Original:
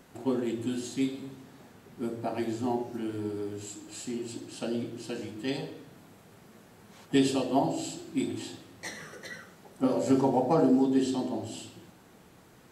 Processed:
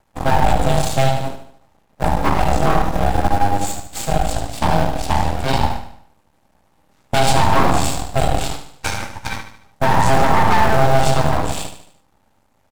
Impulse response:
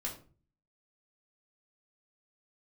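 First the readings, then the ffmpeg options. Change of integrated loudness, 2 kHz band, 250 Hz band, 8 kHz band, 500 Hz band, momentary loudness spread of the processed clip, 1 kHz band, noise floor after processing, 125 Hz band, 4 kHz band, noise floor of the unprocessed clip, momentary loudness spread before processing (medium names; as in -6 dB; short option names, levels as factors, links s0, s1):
+12.0 dB, +20.0 dB, +4.0 dB, +14.5 dB, +10.0 dB, 12 LU, +20.0 dB, -60 dBFS, +20.0 dB, +15.0 dB, -56 dBFS, 18 LU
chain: -filter_complex "[0:a]agate=range=0.0631:threshold=0.00708:ratio=16:detection=peak,equalizer=f=490:w=4.1:g=10.5,aeval=exprs='val(0)*sin(2*PI*400*n/s)':c=same,apsyclip=23.7,asplit=2[s0][s1];[s1]acrusher=samples=41:mix=1:aa=0.000001,volume=0.266[s2];[s0][s2]amix=inputs=2:normalize=0,aeval=exprs='max(val(0),0)':c=same,asplit=2[s3][s4];[s4]aecho=0:1:74|148|222|296|370:0.335|0.157|0.074|0.0348|0.0163[s5];[s3][s5]amix=inputs=2:normalize=0,volume=0.501"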